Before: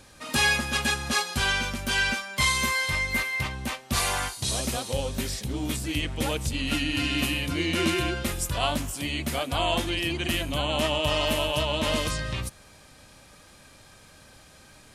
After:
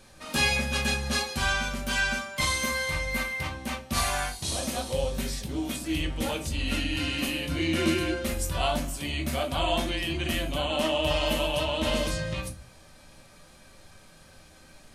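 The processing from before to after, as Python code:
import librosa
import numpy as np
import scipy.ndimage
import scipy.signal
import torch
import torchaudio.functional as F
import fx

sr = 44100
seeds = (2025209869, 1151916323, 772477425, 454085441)

y = fx.notch(x, sr, hz=7300.0, q=29.0)
y = fx.room_shoebox(y, sr, seeds[0], volume_m3=120.0, walls='furnished', distance_m=1.1)
y = F.gain(torch.from_numpy(y), -4.0).numpy()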